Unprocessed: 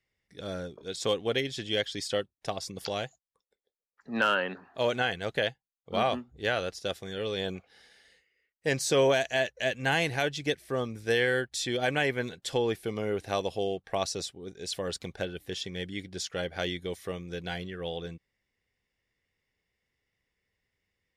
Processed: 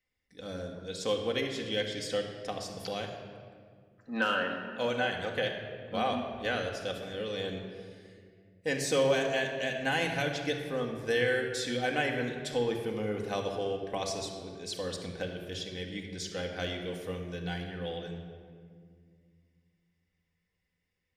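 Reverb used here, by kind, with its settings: shoebox room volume 3600 m³, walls mixed, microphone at 2 m; gain -5 dB

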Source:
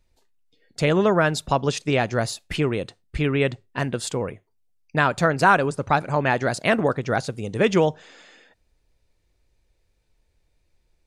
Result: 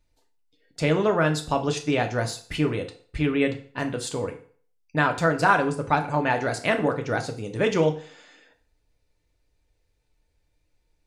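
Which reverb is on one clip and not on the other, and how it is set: FDN reverb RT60 0.47 s, low-frequency decay 0.85×, high-frequency decay 0.9×, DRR 4 dB; gain -4 dB

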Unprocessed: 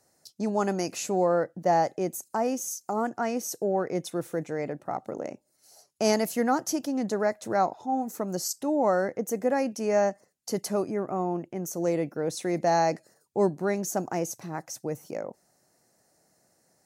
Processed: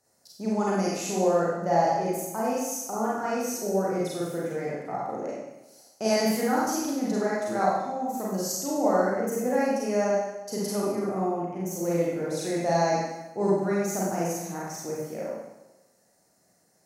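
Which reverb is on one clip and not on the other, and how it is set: Schroeder reverb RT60 1 s, combs from 32 ms, DRR -6.5 dB; gain -6 dB

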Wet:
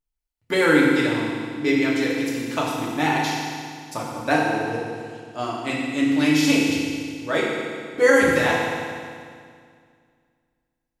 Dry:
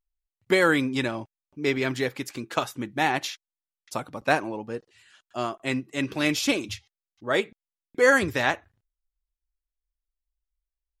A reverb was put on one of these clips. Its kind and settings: FDN reverb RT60 2.1 s, low-frequency decay 1.2×, high-frequency decay 0.95×, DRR -4.5 dB; gain -2 dB

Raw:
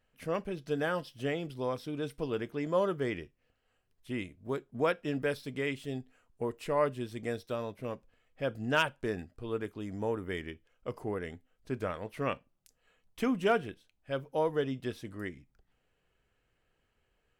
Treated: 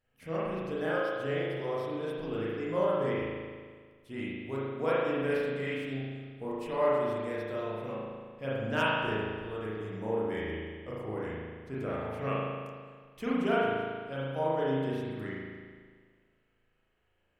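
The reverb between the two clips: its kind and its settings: spring tank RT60 1.7 s, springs 37 ms, chirp 80 ms, DRR -8 dB; gain -7 dB

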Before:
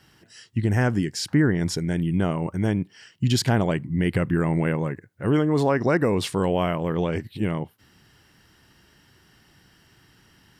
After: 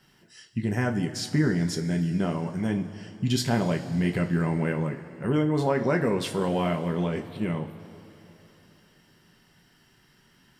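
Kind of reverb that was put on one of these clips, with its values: two-slope reverb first 0.22 s, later 3.4 s, from -18 dB, DRR 3 dB; gain -5 dB

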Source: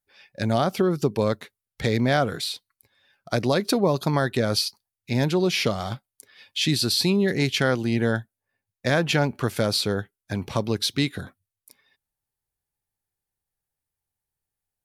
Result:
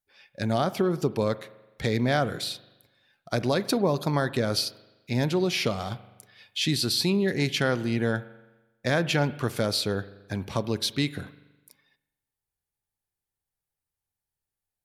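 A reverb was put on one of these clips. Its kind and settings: spring tank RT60 1.1 s, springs 41 ms, chirp 65 ms, DRR 15.5 dB; gain -3 dB

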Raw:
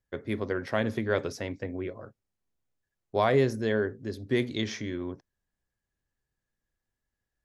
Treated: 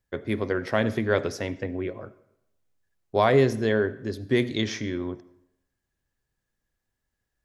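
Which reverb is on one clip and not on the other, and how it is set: digital reverb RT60 0.8 s, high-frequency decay 0.75×, pre-delay 35 ms, DRR 17.5 dB; gain +4 dB

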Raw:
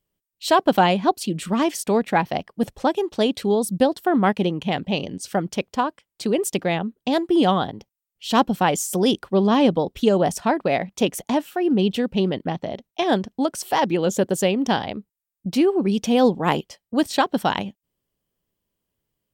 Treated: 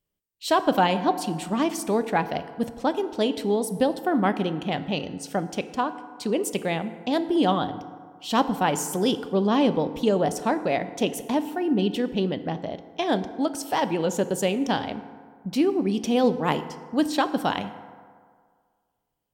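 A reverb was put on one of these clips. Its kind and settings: FDN reverb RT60 1.9 s, low-frequency decay 0.85×, high-frequency decay 0.45×, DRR 10.5 dB; gain -4 dB

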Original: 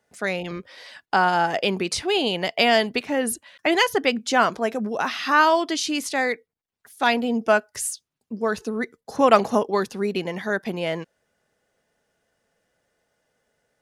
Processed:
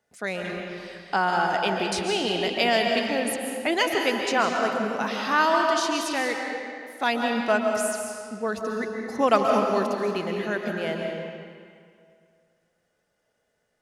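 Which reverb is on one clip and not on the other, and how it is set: digital reverb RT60 2.2 s, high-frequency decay 0.8×, pre-delay 0.1 s, DRR 1.5 dB; gain -4.5 dB

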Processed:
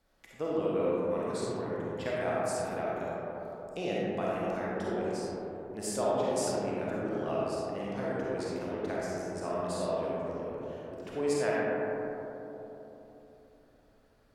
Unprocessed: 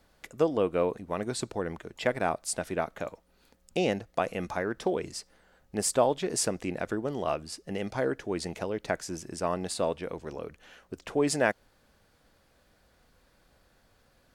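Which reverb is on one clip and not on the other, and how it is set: digital reverb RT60 3.7 s, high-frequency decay 0.25×, pre-delay 10 ms, DRR -7 dB; gain -11 dB

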